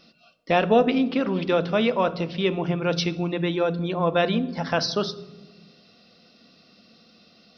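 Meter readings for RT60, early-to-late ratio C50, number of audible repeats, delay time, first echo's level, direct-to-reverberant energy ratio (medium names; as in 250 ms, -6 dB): 1.1 s, 16.5 dB, no echo, no echo, no echo, 11.5 dB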